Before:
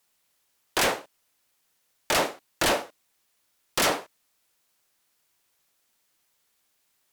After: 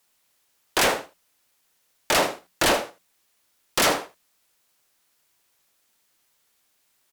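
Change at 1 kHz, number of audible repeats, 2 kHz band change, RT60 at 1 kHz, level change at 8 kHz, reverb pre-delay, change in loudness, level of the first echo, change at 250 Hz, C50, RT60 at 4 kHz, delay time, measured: +3.0 dB, 1, +3.0 dB, no reverb audible, +3.0 dB, no reverb audible, +3.0 dB, −13.5 dB, +3.0 dB, no reverb audible, no reverb audible, 79 ms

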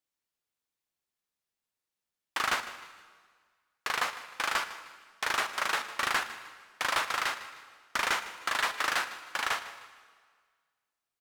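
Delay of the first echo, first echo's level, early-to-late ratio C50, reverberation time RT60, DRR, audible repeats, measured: 154 ms, −16.0 dB, 11.0 dB, 1.7 s, 10.0 dB, 3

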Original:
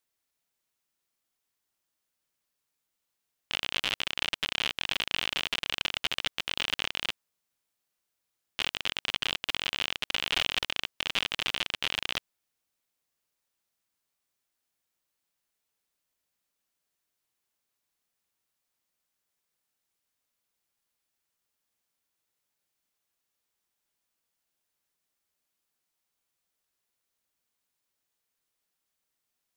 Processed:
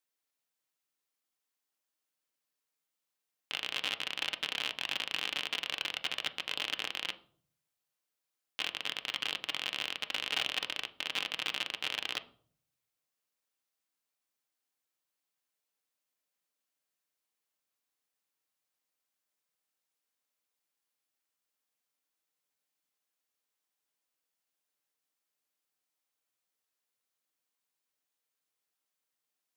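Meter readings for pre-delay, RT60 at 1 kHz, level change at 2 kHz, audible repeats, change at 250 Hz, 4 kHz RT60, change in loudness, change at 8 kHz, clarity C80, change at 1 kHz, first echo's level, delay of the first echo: 4 ms, 0.45 s, −4.0 dB, no echo audible, −6.0 dB, 0.40 s, −4.0 dB, −4.5 dB, 20.5 dB, −4.0 dB, no echo audible, no echo audible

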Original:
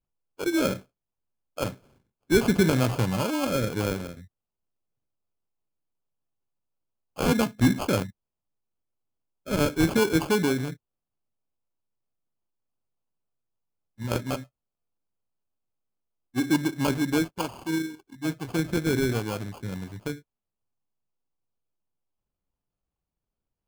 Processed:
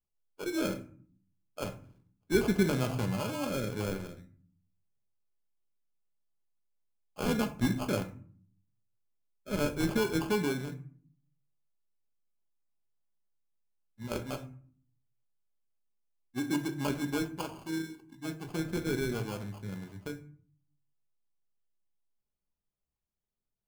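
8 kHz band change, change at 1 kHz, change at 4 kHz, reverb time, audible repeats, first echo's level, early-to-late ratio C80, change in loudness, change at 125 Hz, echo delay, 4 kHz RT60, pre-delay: −7.5 dB, −7.0 dB, −7.0 dB, 0.50 s, no echo audible, no echo audible, 18.0 dB, −7.0 dB, −7.0 dB, no echo audible, 0.25 s, 5 ms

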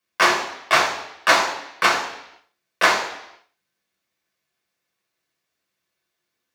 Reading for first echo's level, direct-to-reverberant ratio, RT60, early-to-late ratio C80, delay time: no echo audible, −1.0 dB, 0.80 s, 10.0 dB, no echo audible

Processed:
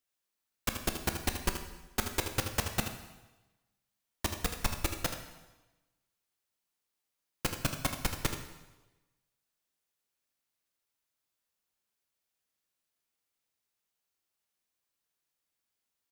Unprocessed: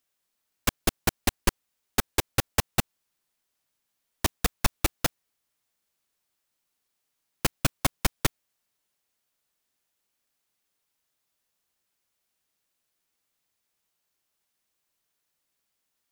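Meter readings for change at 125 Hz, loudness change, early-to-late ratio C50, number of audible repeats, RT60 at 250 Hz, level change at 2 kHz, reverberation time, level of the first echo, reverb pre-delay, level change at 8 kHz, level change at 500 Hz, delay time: −6.0 dB, −6.5 dB, 6.0 dB, 1, 1.1 s, −6.0 dB, 1.1 s, −9.5 dB, 5 ms, −6.0 dB, −6.0 dB, 79 ms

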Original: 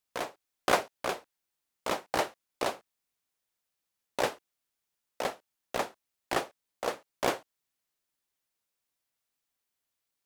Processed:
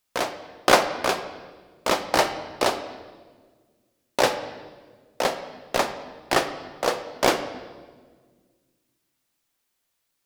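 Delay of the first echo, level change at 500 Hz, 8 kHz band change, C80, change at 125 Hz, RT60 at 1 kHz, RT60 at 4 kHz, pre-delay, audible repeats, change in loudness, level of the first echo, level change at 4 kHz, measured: no echo audible, +9.0 dB, +10.0 dB, 12.0 dB, +9.0 dB, 1.3 s, 1.2 s, 3 ms, no echo audible, +9.0 dB, no echo audible, +11.0 dB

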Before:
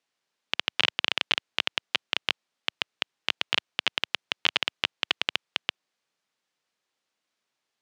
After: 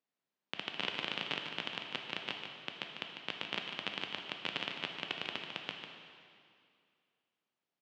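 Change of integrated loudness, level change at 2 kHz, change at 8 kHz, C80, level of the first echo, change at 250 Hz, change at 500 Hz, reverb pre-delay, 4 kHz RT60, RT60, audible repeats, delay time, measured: −11.0 dB, −10.5 dB, −15.0 dB, 3.5 dB, −8.5 dB, −2.0 dB, −5.0 dB, 5 ms, 2.2 s, 2.3 s, 1, 148 ms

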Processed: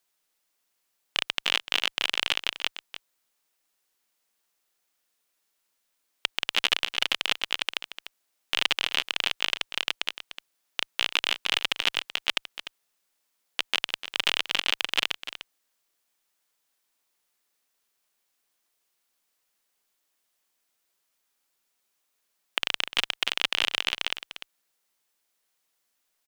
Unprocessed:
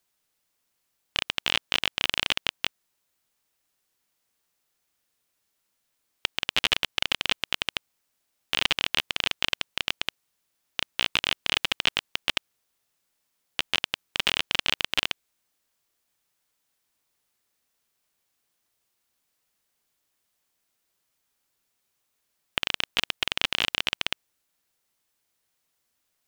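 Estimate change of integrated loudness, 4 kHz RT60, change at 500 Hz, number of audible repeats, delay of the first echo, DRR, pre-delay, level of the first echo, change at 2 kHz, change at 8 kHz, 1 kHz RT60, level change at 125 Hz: 0.0 dB, no reverb audible, −1.0 dB, 1, 298 ms, no reverb audible, no reverb audible, −12.5 dB, 0.0 dB, 0.0 dB, no reverb audible, can't be measured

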